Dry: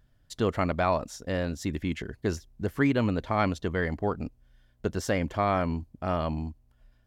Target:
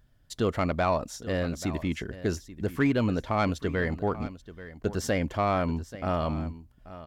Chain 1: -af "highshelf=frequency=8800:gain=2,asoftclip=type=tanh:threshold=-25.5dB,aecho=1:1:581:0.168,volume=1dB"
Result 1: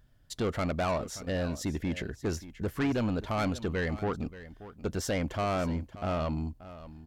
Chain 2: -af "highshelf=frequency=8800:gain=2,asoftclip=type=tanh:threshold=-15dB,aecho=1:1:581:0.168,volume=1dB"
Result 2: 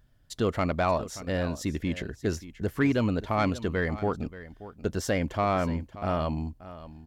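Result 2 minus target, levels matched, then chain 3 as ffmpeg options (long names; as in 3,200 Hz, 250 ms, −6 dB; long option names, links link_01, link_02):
echo 253 ms early
-af "highshelf=frequency=8800:gain=2,asoftclip=type=tanh:threshold=-15dB,aecho=1:1:834:0.168,volume=1dB"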